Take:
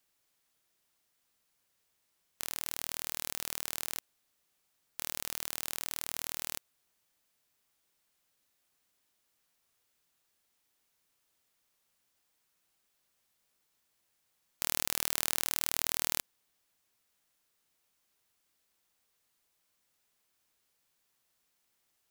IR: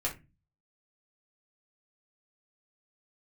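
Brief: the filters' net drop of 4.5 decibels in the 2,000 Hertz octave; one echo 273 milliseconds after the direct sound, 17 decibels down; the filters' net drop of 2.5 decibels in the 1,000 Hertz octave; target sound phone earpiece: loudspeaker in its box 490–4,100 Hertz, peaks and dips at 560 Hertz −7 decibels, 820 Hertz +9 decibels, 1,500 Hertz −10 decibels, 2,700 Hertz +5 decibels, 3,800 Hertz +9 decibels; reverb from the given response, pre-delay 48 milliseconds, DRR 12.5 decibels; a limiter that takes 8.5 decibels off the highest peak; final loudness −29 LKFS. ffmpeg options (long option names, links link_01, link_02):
-filter_complex "[0:a]equalizer=frequency=1000:width_type=o:gain=-5,equalizer=frequency=2000:width_type=o:gain=-6.5,alimiter=limit=-12.5dB:level=0:latency=1,aecho=1:1:273:0.141,asplit=2[link_01][link_02];[1:a]atrim=start_sample=2205,adelay=48[link_03];[link_02][link_03]afir=irnorm=-1:irlink=0,volume=-17.5dB[link_04];[link_01][link_04]amix=inputs=2:normalize=0,highpass=490,equalizer=frequency=560:width_type=q:width=4:gain=-7,equalizer=frequency=820:width_type=q:width=4:gain=9,equalizer=frequency=1500:width_type=q:width=4:gain=-10,equalizer=frequency=2700:width_type=q:width=4:gain=5,equalizer=frequency=3800:width_type=q:width=4:gain=9,lowpass=frequency=4100:width=0.5412,lowpass=frequency=4100:width=1.3066,volume=17.5dB"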